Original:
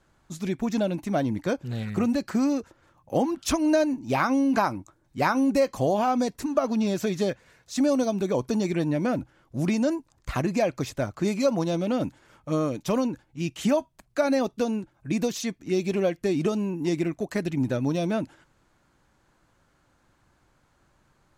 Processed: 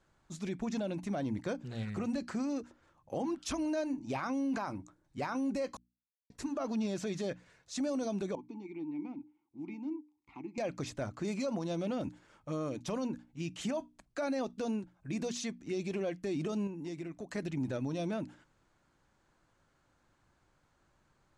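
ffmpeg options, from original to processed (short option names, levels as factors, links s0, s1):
-filter_complex "[0:a]asettb=1/sr,asplit=3[s0][s1][s2];[s0]atrim=end=8.354[s3];[s1]atrim=start=8.35:end=10.58,asetpts=PTS-STARTPTS,afade=t=in:d=0.004:c=qsin,afade=t=out:st=2.226:d=0.004:c=qsin,asplit=3[s4][s5][s6];[s4]bandpass=f=300:t=q:w=8,volume=1[s7];[s5]bandpass=f=870:t=q:w=8,volume=0.501[s8];[s6]bandpass=f=2240:t=q:w=8,volume=0.355[s9];[s7][s8][s9]amix=inputs=3:normalize=0[s10];[s2]atrim=start=10.576[s11];[s3][s10]acrossfade=d=0.004:c1=hsin:c2=qsin[s12];[s12][s11]acrossfade=d=0.004:c1=qsin:c2=hsin,asettb=1/sr,asplit=3[s13][s14][s15];[s13]atrim=end=16.674[s16];[s14]atrim=start=16.67:end=17.3,asetpts=PTS-STARTPTS,afade=t=in:d=0.004:c=qsin,afade=t=out:st=0.626:d=0.004:c=qsin,acompressor=threshold=0.02:ratio=2.5:attack=3.2:release=140:knee=1:detection=peak[s17];[s15]atrim=start=17.296[s18];[s16][s17]acrossfade=d=0.004:c1=hsin:c2=qsin[s19];[s19][s18]acrossfade=d=0.004:c1=qsin:c2=hsin,asplit=3[s20][s21][s22];[s20]atrim=end=5.77,asetpts=PTS-STARTPTS,afade=t=out:st=5.766:d=0.004:c=hsin[s23];[s21]atrim=start=5.77:end=6.3,asetpts=PTS-STARTPTS,volume=0[s24];[s22]atrim=start=6.3,asetpts=PTS-STARTPTS,afade=t=in:d=0.004:c=hsin[s25];[s23][s24][s25]concat=n=3:v=0:a=1,lowpass=f=9700:w=0.5412,lowpass=f=9700:w=1.3066,bandreject=f=60:t=h:w=6,bandreject=f=120:t=h:w=6,bandreject=f=180:t=h:w=6,bandreject=f=240:t=h:w=6,bandreject=f=300:t=h:w=6,alimiter=limit=0.0891:level=0:latency=1:release=29,volume=0.473"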